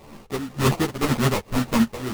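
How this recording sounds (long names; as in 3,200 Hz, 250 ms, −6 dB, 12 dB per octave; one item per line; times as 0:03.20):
a buzz of ramps at a fixed pitch in blocks of 16 samples
tremolo triangle 1.9 Hz, depth 85%
aliases and images of a low sample rate 1,600 Hz, jitter 20%
a shimmering, thickened sound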